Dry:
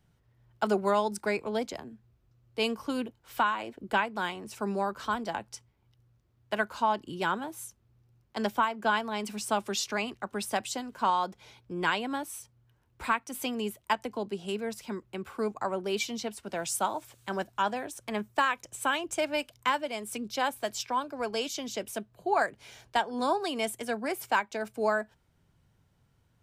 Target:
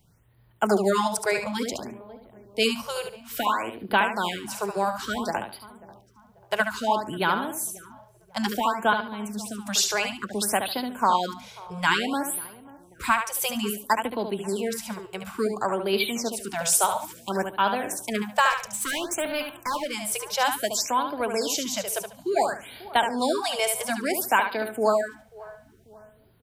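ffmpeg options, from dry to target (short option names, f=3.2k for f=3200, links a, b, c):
-filter_complex "[0:a]highshelf=f=5.7k:g=9,asettb=1/sr,asplit=3[a][b][c];[a]atrim=end=8.934[d];[b]atrim=start=8.93:end=9.67,asetpts=PTS-STARTPTS,afade=t=in:d=0.004:c=qsin,afade=t=out:st=0.736:d=0.004:c=qsin,acrossover=split=240[e][f];[f]acompressor=threshold=-42dB:ratio=8[g];[e][g]amix=inputs=2:normalize=0[h];[c]atrim=start=9.666[i];[d][h]acrossfade=d=0.004:c1=hsin:c2=qsin[j];[j][i]acrossfade=d=0.004:c1=qsin:c2=hsin,asplit=2[k][l];[l]adelay=540,lowpass=f=1k:p=1,volume=-19.5dB,asplit=2[m][n];[n]adelay=540,lowpass=f=1k:p=1,volume=0.5,asplit=2[o][p];[p]adelay=540,lowpass=f=1k:p=1,volume=0.5,asplit=2[q][r];[r]adelay=540,lowpass=f=1k:p=1,volume=0.5[s];[m][o][q][s]amix=inputs=4:normalize=0[t];[k][t]amix=inputs=2:normalize=0,asettb=1/sr,asplit=3[u][v][w];[u]atrim=end=18.504[x];[v]atrim=start=18.5:end=19.91,asetpts=PTS-STARTPTS,afade=t=in:d=0.004:c=qsin,afade=t=out:st=1.406:d=0.004:c=qsin,asoftclip=type=hard:threshold=-30dB[y];[w]atrim=start=19.906[z];[x][y]acrossfade=d=0.004:c1=hsin:c2=qsin[aa];[aa][z]acrossfade=d=0.004:c1=qsin:c2=hsin,asplit=2[ab][ac];[ac]aecho=0:1:72|144|216:0.447|0.112|0.0279[ad];[ab][ad]amix=inputs=2:normalize=0,afftfilt=real='re*(1-between(b*sr/1024,240*pow(7200/240,0.5+0.5*sin(2*PI*0.58*pts/sr))/1.41,240*pow(7200/240,0.5+0.5*sin(2*PI*0.58*pts/sr))*1.41))':imag='im*(1-between(b*sr/1024,240*pow(7200/240,0.5+0.5*sin(2*PI*0.58*pts/sr))/1.41,240*pow(7200/240,0.5+0.5*sin(2*PI*0.58*pts/sr))*1.41))':win_size=1024:overlap=0.75,volume=5dB"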